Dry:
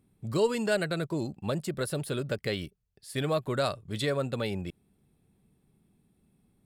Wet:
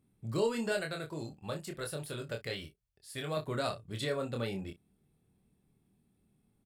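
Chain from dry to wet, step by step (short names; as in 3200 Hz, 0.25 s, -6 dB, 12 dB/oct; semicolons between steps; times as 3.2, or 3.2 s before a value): 0.72–3.37 bell 230 Hz -6.5 dB 2 oct; early reflections 26 ms -4 dB, 59 ms -16.5 dB; gain -6 dB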